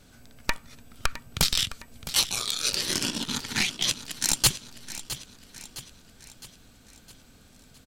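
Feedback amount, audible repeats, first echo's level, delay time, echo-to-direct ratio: 51%, 4, -14.0 dB, 0.661 s, -12.5 dB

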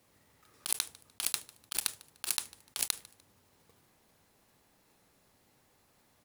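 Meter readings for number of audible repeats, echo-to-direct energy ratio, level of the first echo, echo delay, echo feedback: 2, -22.5 dB, -23.0 dB, 0.149 s, 33%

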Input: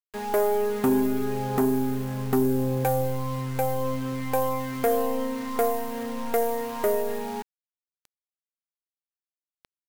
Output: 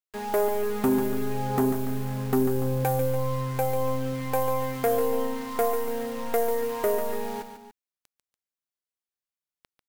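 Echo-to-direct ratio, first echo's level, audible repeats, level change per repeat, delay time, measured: -7.5 dB, -8.5 dB, 2, -6.0 dB, 0.144 s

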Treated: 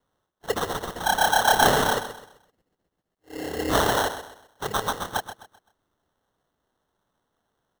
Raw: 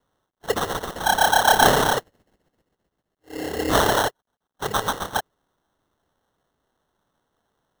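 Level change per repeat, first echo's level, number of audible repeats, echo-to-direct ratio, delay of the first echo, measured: -9.5 dB, -11.5 dB, 3, -11.0 dB, 0.129 s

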